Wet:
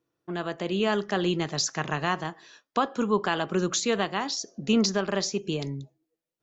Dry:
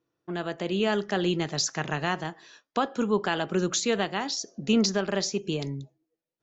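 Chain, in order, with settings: dynamic EQ 1100 Hz, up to +6 dB, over -48 dBFS, Q 4.8

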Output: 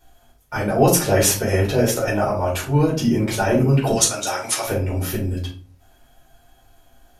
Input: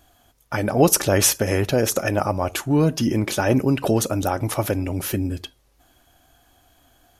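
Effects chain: 3.92–4.66 weighting filter ITU-R 468; shoebox room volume 210 m³, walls furnished, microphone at 4.6 m; gain -8 dB

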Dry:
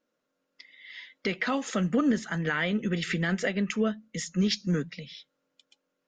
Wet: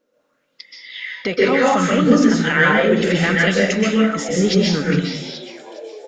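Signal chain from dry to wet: frequency-shifting echo 0.414 s, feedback 63%, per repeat +83 Hz, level -19 dB; plate-style reverb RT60 0.78 s, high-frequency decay 0.65×, pre-delay 0.115 s, DRR -4.5 dB; LFO bell 0.67 Hz 430–5600 Hz +10 dB; gain +5.5 dB

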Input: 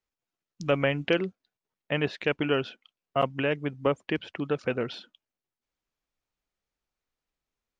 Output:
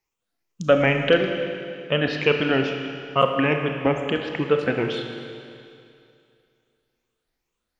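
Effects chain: moving spectral ripple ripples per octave 0.74, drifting +2.3 Hz, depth 11 dB; Schroeder reverb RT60 2.5 s, combs from 26 ms, DRR 4 dB; gain +4.5 dB

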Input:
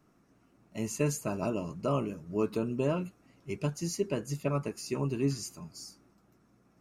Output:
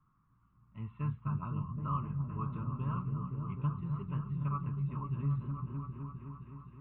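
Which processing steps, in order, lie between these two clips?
EQ curve 130 Hz 0 dB, 340 Hz -21 dB, 670 Hz -27 dB, 1100 Hz +4 dB, 1700 Hz -14 dB, 2600 Hz -17 dB; on a send: repeats that get brighter 0.258 s, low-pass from 200 Hz, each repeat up 1 oct, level 0 dB; on the sum: downsampling 8000 Hz

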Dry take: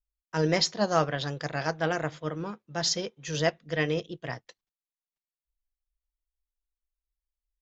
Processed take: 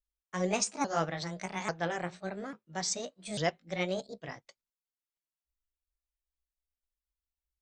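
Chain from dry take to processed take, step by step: repeated pitch sweeps +5.5 st, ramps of 0.843 s; gain -4.5 dB

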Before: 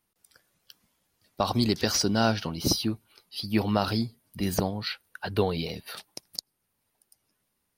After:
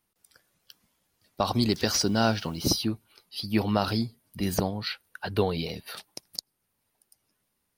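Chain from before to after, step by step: 1.7–2.61 added noise white -60 dBFS

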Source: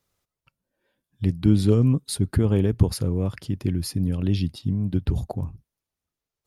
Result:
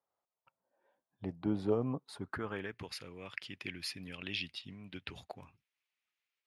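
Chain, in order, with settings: AGC gain up to 12.5 dB; band-pass sweep 790 Hz -> 2400 Hz, 2–2.87; gain -3 dB

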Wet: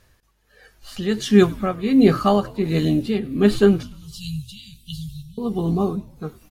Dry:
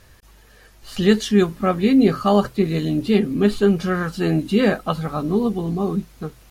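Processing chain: 3.83–5.38 Chebyshev band-stop 140–3100 Hz, order 4; spectral noise reduction 10 dB; tremolo 1.4 Hz, depth 71%; frequency-shifting echo 99 ms, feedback 61%, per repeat -79 Hz, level -22 dB; gain +3 dB

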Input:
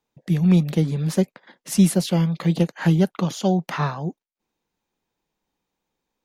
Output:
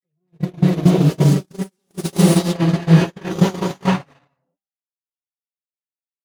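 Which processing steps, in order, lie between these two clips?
minimum comb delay 7.2 ms; low shelf 430 Hz +4.5 dB; limiter -14.5 dBFS, peak gain reduction 9 dB; high shelf 8300 Hz -4 dB; non-linear reverb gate 0.47 s rising, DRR -7 dB; spectral noise reduction 11 dB; reverse echo 0.255 s -3.5 dB; vibrato 3.3 Hz 24 cents; HPF 73 Hz 24 dB/oct; de-hum 197.7 Hz, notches 39; gate -16 dBFS, range -50 dB; gain +3.5 dB

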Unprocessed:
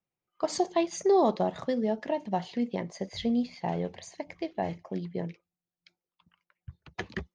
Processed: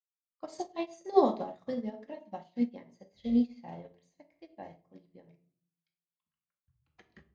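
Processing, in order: reverb RT60 0.55 s, pre-delay 4 ms, DRR 0.5 dB; upward expander 2.5:1, over -37 dBFS

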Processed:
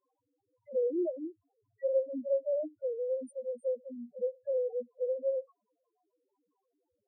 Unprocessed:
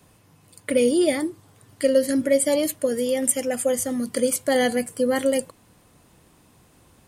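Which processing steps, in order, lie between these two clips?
envelope flanger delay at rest 11.1 ms, full sweep at -20 dBFS; three-band isolator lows -16 dB, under 340 Hz, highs -16 dB, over 2300 Hz; in parallel at -8 dB: sample-and-hold 11×; on the sum: loudest bins only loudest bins 1; gain -4.5 dB

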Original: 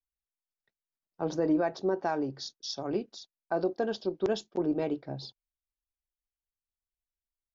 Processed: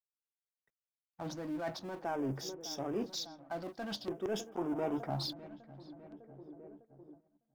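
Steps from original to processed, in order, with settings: G.711 law mismatch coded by mu; vibrato 0.4 Hz 28 cents; in parallel at -10.5 dB: overloaded stage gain 32.5 dB; on the sum: darkening echo 0.603 s, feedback 66%, low-pass 1700 Hz, level -19 dB; reverse; compressor 5:1, threshold -35 dBFS, peak gain reduction 12.5 dB; reverse; spectral gain 4.55–5.24, 640–1500 Hz +8 dB; LFO notch square 0.49 Hz 420–4200 Hz; gate -58 dBFS, range -15 dB; gain +1 dB

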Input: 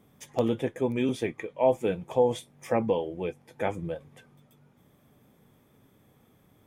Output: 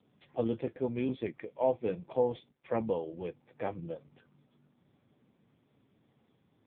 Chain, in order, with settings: 2.21–3.02 gate -47 dBFS, range -35 dB; gain -5 dB; AMR-NB 5.9 kbps 8000 Hz

